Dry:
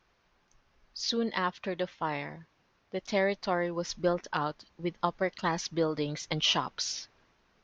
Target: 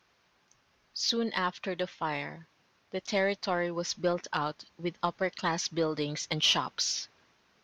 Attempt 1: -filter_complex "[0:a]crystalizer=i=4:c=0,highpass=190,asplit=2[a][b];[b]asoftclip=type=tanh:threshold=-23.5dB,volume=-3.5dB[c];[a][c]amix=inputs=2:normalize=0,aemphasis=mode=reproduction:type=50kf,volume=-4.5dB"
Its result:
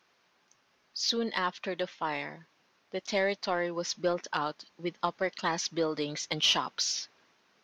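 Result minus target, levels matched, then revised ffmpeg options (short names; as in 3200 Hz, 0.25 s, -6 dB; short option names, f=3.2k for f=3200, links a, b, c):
125 Hz band -4.5 dB
-filter_complex "[0:a]crystalizer=i=4:c=0,highpass=82,asplit=2[a][b];[b]asoftclip=type=tanh:threshold=-23.5dB,volume=-3.5dB[c];[a][c]amix=inputs=2:normalize=0,aemphasis=mode=reproduction:type=50kf,volume=-4.5dB"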